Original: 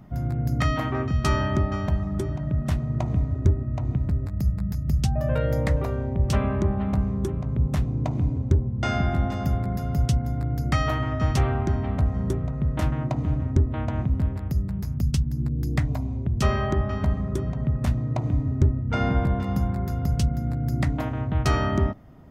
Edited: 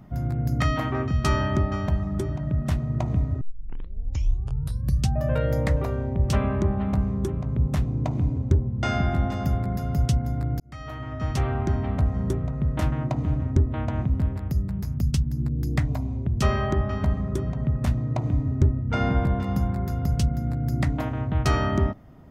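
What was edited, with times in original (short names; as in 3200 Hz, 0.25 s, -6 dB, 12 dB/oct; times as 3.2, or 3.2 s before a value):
3.41 tape start 1.66 s
10.6–11.72 fade in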